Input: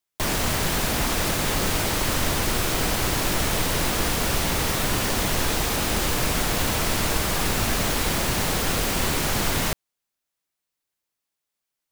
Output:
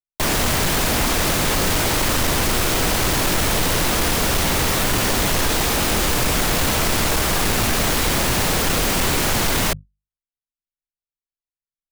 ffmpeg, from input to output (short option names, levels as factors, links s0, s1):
-af "bandreject=f=50:t=h:w=6,bandreject=f=100:t=h:w=6,bandreject=f=150:t=h:w=6,bandreject=f=200:t=h:w=6,anlmdn=0.398,volume=10.6,asoftclip=hard,volume=0.0944,volume=2"